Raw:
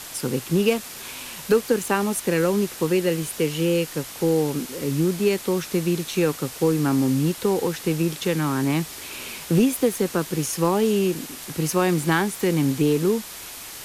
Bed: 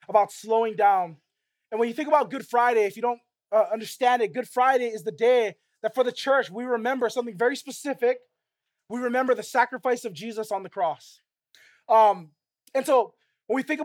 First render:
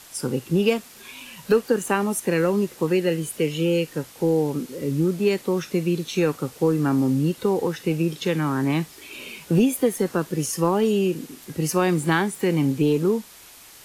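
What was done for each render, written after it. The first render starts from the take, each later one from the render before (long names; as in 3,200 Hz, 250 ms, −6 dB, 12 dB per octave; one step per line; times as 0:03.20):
noise reduction from a noise print 9 dB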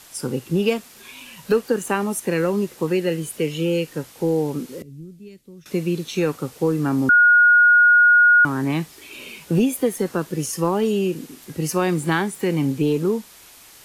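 0:04.82–0:05.66: guitar amp tone stack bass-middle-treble 10-0-1
0:07.09–0:08.45: beep over 1,440 Hz −9.5 dBFS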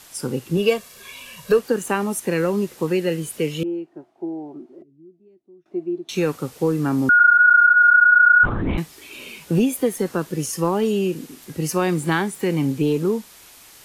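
0:00.57–0:01.59: comb filter 1.8 ms
0:03.63–0:06.09: pair of resonant band-passes 490 Hz, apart 0.91 octaves
0:07.19–0:08.78: linear-prediction vocoder at 8 kHz whisper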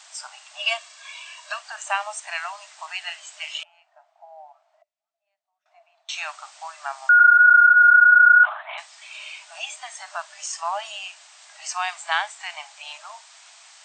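brick-wall band-pass 600–8,700 Hz
dynamic equaliser 3,000 Hz, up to +6 dB, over −39 dBFS, Q 2.5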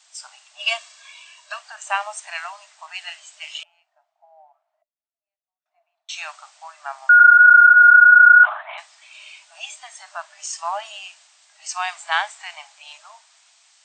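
multiband upward and downward expander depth 40%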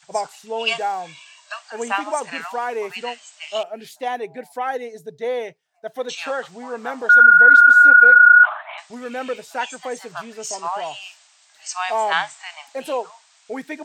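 mix in bed −4.5 dB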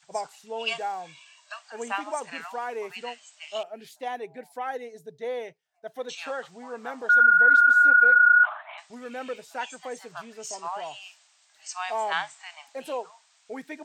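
level −7.5 dB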